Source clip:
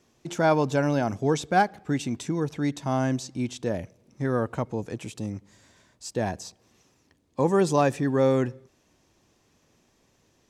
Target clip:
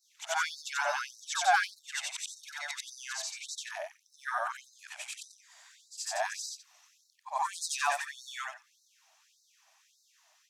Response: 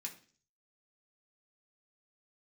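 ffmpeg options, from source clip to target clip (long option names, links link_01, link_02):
-af "afftfilt=real='re':imag='-im':win_size=8192:overlap=0.75,afftfilt=real='re*gte(b*sr/1024,580*pow(3800/580,0.5+0.5*sin(2*PI*1.7*pts/sr)))':imag='im*gte(b*sr/1024,580*pow(3800/580,0.5+0.5*sin(2*PI*1.7*pts/sr)))':win_size=1024:overlap=0.75,volume=7.5dB"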